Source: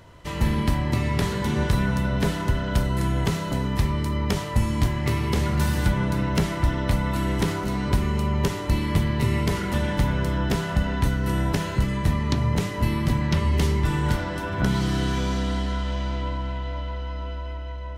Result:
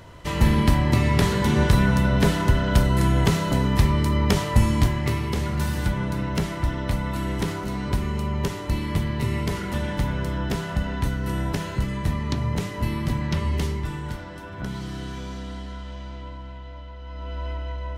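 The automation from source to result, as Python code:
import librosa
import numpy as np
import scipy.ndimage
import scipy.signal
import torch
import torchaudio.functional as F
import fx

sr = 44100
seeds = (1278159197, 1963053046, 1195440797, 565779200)

y = fx.gain(x, sr, db=fx.line((4.66, 4.0), (5.32, -2.5), (13.52, -2.5), (14.08, -9.0), (16.97, -9.0), (17.44, 2.5)))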